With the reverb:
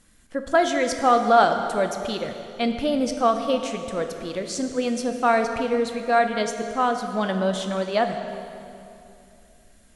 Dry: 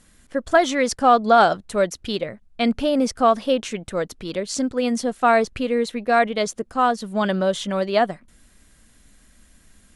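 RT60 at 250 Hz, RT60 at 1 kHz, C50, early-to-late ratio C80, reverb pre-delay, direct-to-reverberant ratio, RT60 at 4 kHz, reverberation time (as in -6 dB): 3.1 s, 2.6 s, 7.0 dB, 7.5 dB, 4 ms, 5.5 dB, 2.2 s, 2.7 s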